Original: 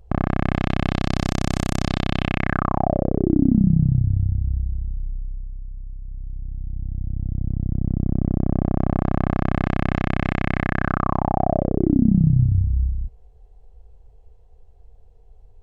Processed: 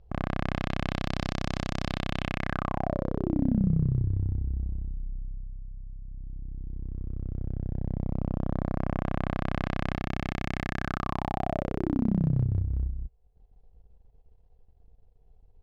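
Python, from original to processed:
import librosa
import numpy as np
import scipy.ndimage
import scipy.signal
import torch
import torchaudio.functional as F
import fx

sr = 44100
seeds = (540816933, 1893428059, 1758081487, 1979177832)

y = scipy.signal.sosfilt(scipy.signal.butter(4, 5300.0, 'lowpass', fs=sr, output='sos'), x)
y = fx.transient(y, sr, attack_db=-5, sustain_db=fx.steps((0.0, 4.0), (9.92, -10.0)))
y = F.gain(torch.from_numpy(y), -7.0).numpy()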